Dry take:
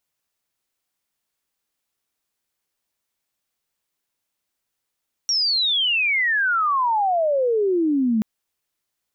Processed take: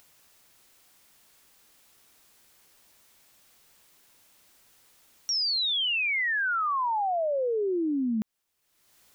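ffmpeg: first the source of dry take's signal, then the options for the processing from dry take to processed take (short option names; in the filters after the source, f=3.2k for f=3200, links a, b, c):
-f lavfi -i "aevalsrc='pow(10,(-17.5+1*t/2.93)/20)*sin(2*PI*5700*2.93/log(210/5700)*(exp(log(210/5700)*t/2.93)-1))':d=2.93:s=44100"
-af "alimiter=limit=-24dB:level=0:latency=1:release=153,acompressor=mode=upward:threshold=-44dB:ratio=2.5"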